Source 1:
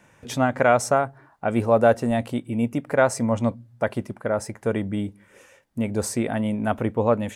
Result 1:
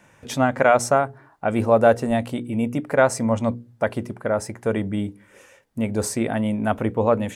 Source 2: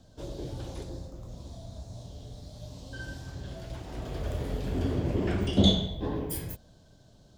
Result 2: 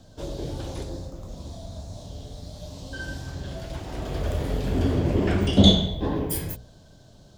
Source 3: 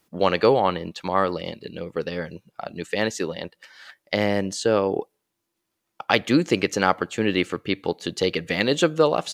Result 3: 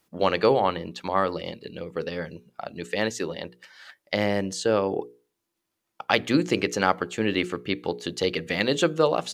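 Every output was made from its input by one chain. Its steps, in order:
notches 60/120/180/240/300/360/420/480 Hz; normalise peaks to -3 dBFS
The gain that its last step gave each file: +2.0, +6.5, -2.0 dB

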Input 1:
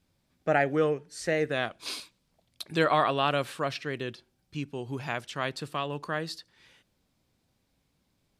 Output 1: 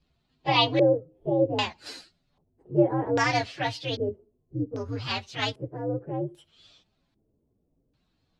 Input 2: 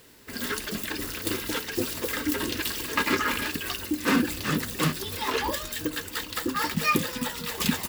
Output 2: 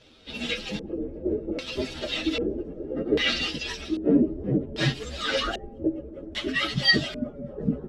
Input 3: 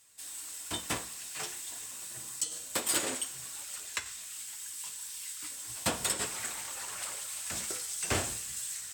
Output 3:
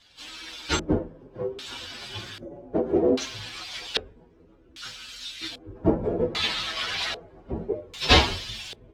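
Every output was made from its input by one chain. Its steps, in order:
inharmonic rescaling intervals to 128%; LFO low-pass square 0.63 Hz 440–3900 Hz; Vorbis 128 kbps 44100 Hz; match loudness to -27 LUFS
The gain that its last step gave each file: +4.5, +4.0, +18.5 dB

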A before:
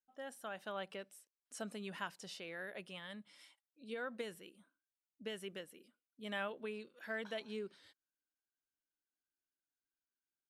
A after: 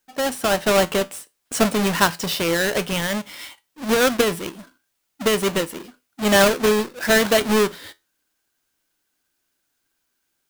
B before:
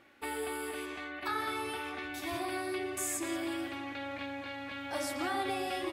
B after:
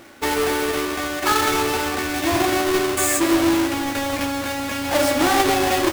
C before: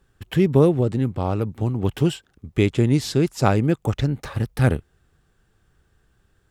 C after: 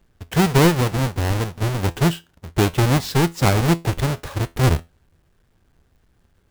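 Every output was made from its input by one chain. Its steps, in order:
half-waves squared off; resonator 84 Hz, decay 0.23 s, harmonics all, mix 50%; match loudness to -20 LUFS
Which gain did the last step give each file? +25.0, +15.5, +0.5 dB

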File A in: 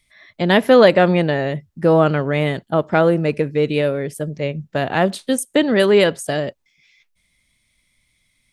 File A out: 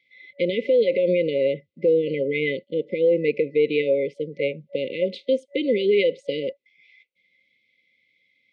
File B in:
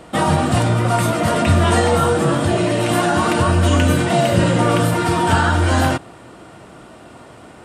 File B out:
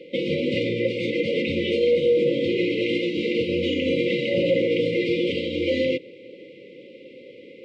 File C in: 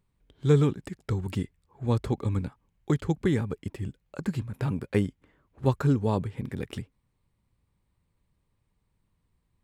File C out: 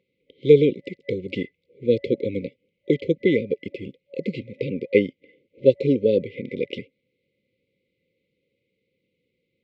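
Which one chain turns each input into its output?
speaker cabinet 290–3800 Hz, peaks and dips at 520 Hz +10 dB, 960 Hz -9 dB, 1900 Hz +9 dB; limiter -9.5 dBFS; FFT band-reject 570–2000 Hz; match loudness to -23 LUFS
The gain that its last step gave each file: -2.0, -1.5, +8.5 dB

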